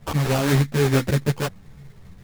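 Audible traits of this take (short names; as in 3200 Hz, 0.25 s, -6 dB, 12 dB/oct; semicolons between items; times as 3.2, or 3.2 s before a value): aliases and images of a low sample rate 2000 Hz, jitter 20%; a shimmering, thickened sound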